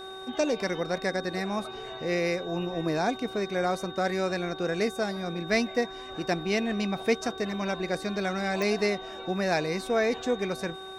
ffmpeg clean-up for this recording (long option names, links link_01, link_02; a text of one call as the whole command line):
ffmpeg -i in.wav -af "adeclick=threshold=4,bandreject=frequency=380.8:width_type=h:width=4,bandreject=frequency=761.6:width_type=h:width=4,bandreject=frequency=1142.4:width_type=h:width=4,bandreject=frequency=1523.2:width_type=h:width=4,bandreject=frequency=3700:width=30" out.wav